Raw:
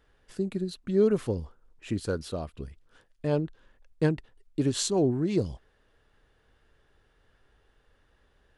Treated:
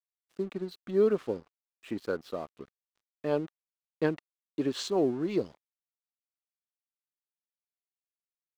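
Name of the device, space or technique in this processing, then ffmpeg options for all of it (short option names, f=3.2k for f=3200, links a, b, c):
pocket radio on a weak battery: -af "highpass=270,lowpass=4k,aeval=exprs='sgn(val(0))*max(abs(val(0))-0.00251,0)':c=same,equalizer=f=1.2k:t=o:w=0.21:g=4"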